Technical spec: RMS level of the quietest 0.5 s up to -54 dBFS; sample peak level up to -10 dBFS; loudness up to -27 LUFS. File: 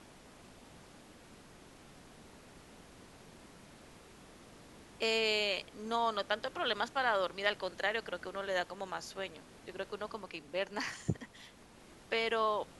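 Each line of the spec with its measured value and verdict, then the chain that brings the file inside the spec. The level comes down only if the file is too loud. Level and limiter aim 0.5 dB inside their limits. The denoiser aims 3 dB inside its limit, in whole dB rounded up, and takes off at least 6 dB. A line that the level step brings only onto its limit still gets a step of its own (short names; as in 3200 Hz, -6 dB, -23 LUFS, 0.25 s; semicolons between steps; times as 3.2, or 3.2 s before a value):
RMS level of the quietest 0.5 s -57 dBFS: OK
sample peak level -14.5 dBFS: OK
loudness -35.5 LUFS: OK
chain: none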